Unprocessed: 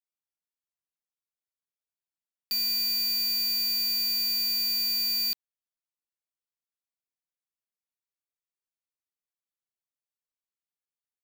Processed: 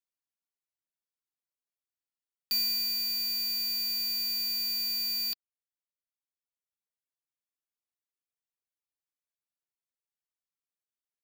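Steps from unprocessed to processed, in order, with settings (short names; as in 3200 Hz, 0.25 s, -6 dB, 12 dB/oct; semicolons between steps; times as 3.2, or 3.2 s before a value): reverb removal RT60 1.6 s; sample leveller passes 1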